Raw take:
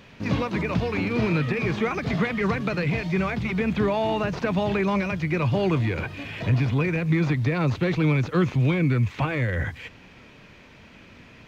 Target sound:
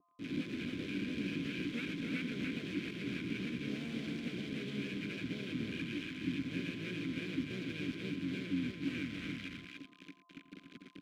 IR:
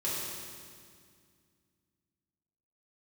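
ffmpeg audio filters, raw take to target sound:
-filter_complex "[0:a]aemphasis=mode=reproduction:type=bsi,areverse,acompressor=threshold=-25dB:ratio=6,areverse,aexciter=amount=3.2:drive=0.8:freq=4400,acrusher=bits=3:dc=4:mix=0:aa=0.000001,aeval=exprs='val(0)+0.0112*sin(2*PI*990*n/s)':channel_layout=same,asplit=3[link_01][link_02][link_03];[link_01]bandpass=frequency=270:width_type=q:width=8,volume=0dB[link_04];[link_02]bandpass=frequency=2290:width_type=q:width=8,volume=-6dB[link_05];[link_03]bandpass=frequency=3010:width_type=q:width=8,volume=-9dB[link_06];[link_04][link_05][link_06]amix=inputs=3:normalize=0,asplit=3[link_07][link_08][link_09];[link_08]asetrate=29433,aresample=44100,atempo=1.49831,volume=-7dB[link_10];[link_09]asetrate=52444,aresample=44100,atempo=0.840896,volume=-9dB[link_11];[link_07][link_10][link_11]amix=inputs=3:normalize=0,asplit=2[link_12][link_13];[link_13]aecho=0:1:90|117|301:0.178|0.2|0.631[link_14];[link_12][link_14]amix=inputs=2:normalize=0,asetrate=45938,aresample=44100,adynamicequalizer=threshold=0.00126:dfrequency=1500:dqfactor=0.7:tfrequency=1500:tqfactor=0.7:attack=5:release=100:ratio=0.375:range=1.5:mode=boostabove:tftype=highshelf,volume=2.5dB"

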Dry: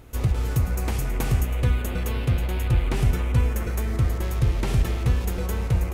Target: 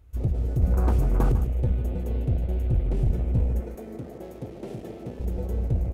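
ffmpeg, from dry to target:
ffmpeg -i in.wav -filter_complex "[0:a]aeval=exprs='clip(val(0),-1,0.1)':channel_layout=same,asettb=1/sr,asplit=3[link_01][link_02][link_03];[link_01]atrim=end=0.624[link_04];[link_02]atrim=start=0.62:end=1.32,asetpts=PTS-STARTPTS,afade=type=in:duration=0.004:curve=qsin,afade=type=out:start_time=0.696:duration=0.004:curve=qsin,acontrast=34[link_05];[link_03]atrim=start=1.316[link_06];[link_04][link_05]acrossfade=duration=0.004:curve1=hsin:curve2=qsin[link_07];[link_07][link_06]acrossfade=duration=0.004:curve1=qsin:curve2=hsin,afwtdn=0.0355,asettb=1/sr,asplit=3[link_08][link_09][link_10];[link_08]atrim=end=3.604[link_11];[link_09]atrim=start=3.6:end=5.2,asetpts=PTS-STARTPTS,afade=type=in:duration=0.004:curve=qsin,afade=type=out:start_time=1.596:duration=0.004:curve=qsin,highpass=260[link_12];[link_10]atrim=start=5.196[link_13];[link_11][link_12]acrossfade=duration=0.004:curve1=hsin:curve2=qsin[link_14];[link_14][link_13]acrossfade=duration=0.004:curve1=qsin:curve2=hsin,aecho=1:1:149:0.266,volume=-1.5dB" out.wav

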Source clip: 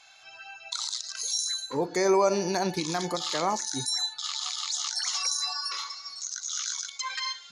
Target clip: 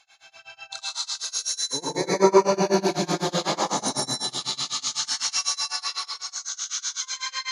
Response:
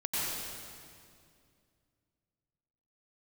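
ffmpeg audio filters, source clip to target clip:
-filter_complex "[1:a]atrim=start_sample=2205[link_01];[0:a][link_01]afir=irnorm=-1:irlink=0,tremolo=f=8:d=0.96"

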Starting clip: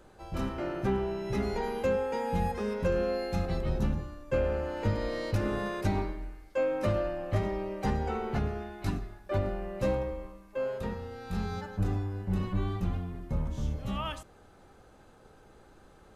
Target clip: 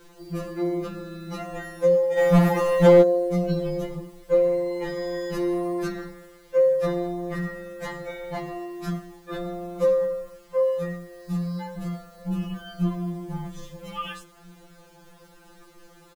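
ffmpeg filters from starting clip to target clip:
ffmpeg -i in.wav -filter_complex "[0:a]asettb=1/sr,asplit=3[link_01][link_02][link_03];[link_01]atrim=end=9.754[link_04];[link_02]atrim=start=9.75:end=10.63,asetpts=PTS-STARTPTS,afade=type=in:duration=0.004:curve=qsin,afade=type=out:start_time=0.876:duration=0.004:curve=qsin,equalizer=frequency=990:width=3:gain=6[link_05];[link_03]atrim=start=10.626[link_06];[link_04][link_05]acrossfade=duration=0.004:curve1=hsin:curve2=qsin[link_07];[link_07][link_06]acrossfade=duration=0.004:curve1=qsin:curve2=hsin,asplit=2[link_08][link_09];[link_09]adelay=1633,volume=-26dB,highshelf=frequency=4000:gain=-36.7[link_10];[link_08][link_10]amix=inputs=2:normalize=0,adynamicequalizer=threshold=0.00794:dfrequency=110:dqfactor=2.7:tfrequency=110:tqfactor=2.7:attack=5:release=100:ratio=0.375:range=1.5:mode=boostabove:tftype=bell,acrusher=bits=9:mix=0:aa=0.000001,asplit=3[link_11][link_12][link_13];[link_11]afade=type=out:start_time=2.17:duration=0.02[link_14];[link_12]aeval=exprs='0.133*sin(PI/2*2.24*val(0)/0.133)':channel_layout=same,afade=type=in:start_time=2.17:duration=0.02,afade=type=out:start_time=3.01:duration=0.02[link_15];[link_13]afade=type=in:start_time=3.01:duration=0.02[link_16];[link_14][link_15][link_16]amix=inputs=3:normalize=0,afftfilt=real='re*2.83*eq(mod(b,8),0)':imag='im*2.83*eq(mod(b,8),0)':win_size=2048:overlap=0.75,volume=6dB" out.wav

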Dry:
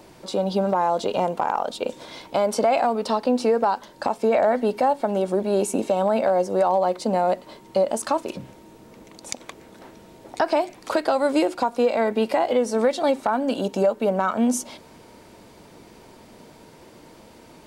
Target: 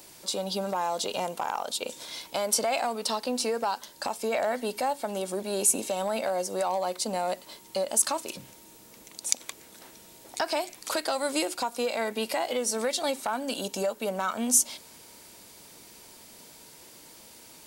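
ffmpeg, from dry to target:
ffmpeg -i in.wav -af "acontrast=27,crystalizer=i=8:c=0,volume=-15.5dB" out.wav

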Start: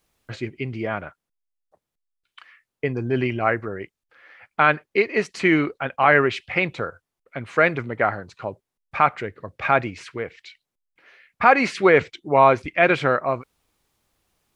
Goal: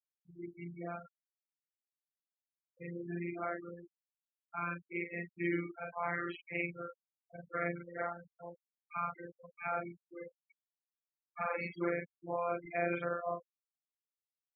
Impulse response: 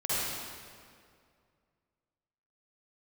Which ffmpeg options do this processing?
-filter_complex "[0:a]afftfilt=real='re':imag='-im':win_size=4096:overlap=0.75,acrossover=split=110[link_01][link_02];[link_02]alimiter=limit=-15dB:level=0:latency=1:release=96[link_03];[link_01][link_03]amix=inputs=2:normalize=0,afftfilt=real='hypot(re,im)*cos(PI*b)':imag='0':win_size=1024:overlap=0.75,afftfilt=real='re*gte(hypot(re,im),0.0355)':imag='im*gte(hypot(re,im),0.0355)':win_size=1024:overlap=0.75,volume=-7dB"

